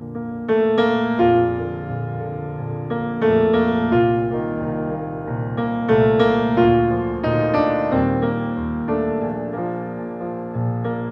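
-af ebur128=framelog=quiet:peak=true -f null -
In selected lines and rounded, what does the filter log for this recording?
Integrated loudness:
  I:         -20.3 LUFS
  Threshold: -30.3 LUFS
Loudness range:
  LRA:         3.7 LU
  Threshold: -39.9 LUFS
  LRA low:   -22.0 LUFS
  LRA high:  -18.3 LUFS
True peak:
  Peak:       -3.9 dBFS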